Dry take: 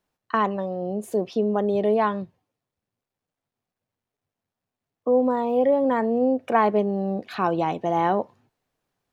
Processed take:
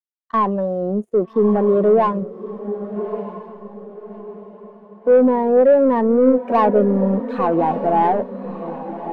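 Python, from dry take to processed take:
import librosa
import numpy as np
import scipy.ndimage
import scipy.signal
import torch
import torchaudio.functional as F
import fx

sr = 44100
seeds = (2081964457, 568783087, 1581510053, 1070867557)

p1 = fx.high_shelf(x, sr, hz=4900.0, db=-10.0)
p2 = fx.leveller(p1, sr, passes=3)
p3 = p2 + fx.echo_diffused(p2, sr, ms=1224, feedback_pct=53, wet_db=-7.0, dry=0)
p4 = fx.spectral_expand(p3, sr, expansion=1.5)
y = F.gain(torch.from_numpy(p4), -1.5).numpy()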